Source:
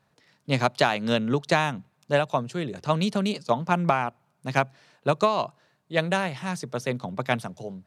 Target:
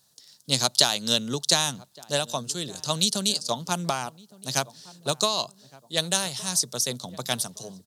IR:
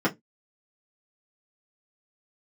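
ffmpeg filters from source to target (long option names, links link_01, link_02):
-filter_complex "[0:a]aexciter=amount=13.1:drive=4.5:freq=3500,asplit=2[link_01][link_02];[link_02]adelay=1165,lowpass=frequency=1100:poles=1,volume=-20.5dB,asplit=2[link_03][link_04];[link_04]adelay=1165,lowpass=frequency=1100:poles=1,volume=0.42,asplit=2[link_05][link_06];[link_06]adelay=1165,lowpass=frequency=1100:poles=1,volume=0.42[link_07];[link_03][link_05][link_07]amix=inputs=3:normalize=0[link_08];[link_01][link_08]amix=inputs=2:normalize=0,volume=-5.5dB"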